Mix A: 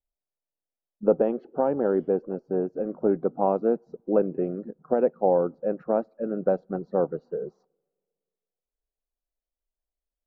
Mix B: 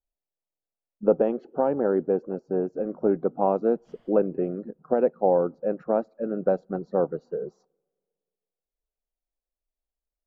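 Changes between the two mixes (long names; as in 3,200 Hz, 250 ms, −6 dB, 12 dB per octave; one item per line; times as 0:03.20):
background: entry +2.05 s
master: remove high-frequency loss of the air 150 metres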